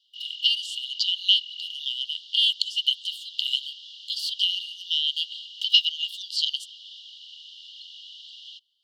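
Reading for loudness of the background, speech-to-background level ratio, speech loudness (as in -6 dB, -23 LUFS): -40.0 LUFS, 16.0 dB, -24.0 LUFS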